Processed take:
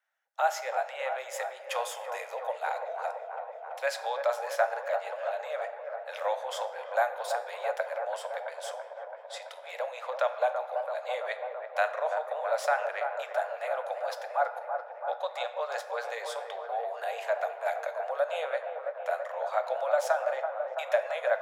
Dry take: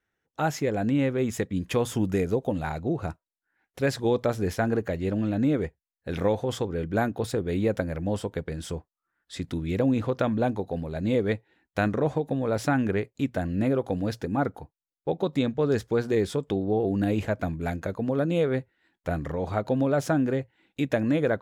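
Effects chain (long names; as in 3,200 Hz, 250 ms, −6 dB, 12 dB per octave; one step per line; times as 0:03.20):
Butterworth high-pass 570 Hz 72 dB per octave
tilt shelving filter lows +3 dB, about 1,300 Hz
delay with a low-pass on its return 333 ms, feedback 74%, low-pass 1,300 Hz, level −5.5 dB
on a send at −9 dB: convolution reverb RT60 1.1 s, pre-delay 6 ms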